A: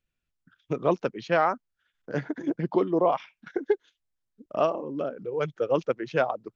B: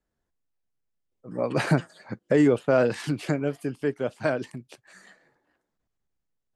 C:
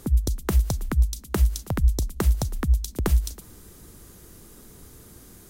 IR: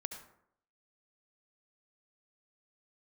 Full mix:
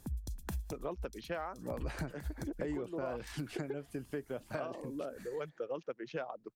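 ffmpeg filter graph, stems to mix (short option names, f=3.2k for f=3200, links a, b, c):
-filter_complex "[0:a]highpass=150,volume=-7dB,asplit=2[a][b];[1:a]adelay=300,volume=-6dB[c];[2:a]aecho=1:1:1.2:0.47,volume=-13.5dB[d];[b]apad=whole_len=242241[e];[d][e]sidechaincompress=threshold=-45dB:ratio=6:attack=45:release=139[f];[a][c][f]amix=inputs=3:normalize=0,acompressor=threshold=-36dB:ratio=6"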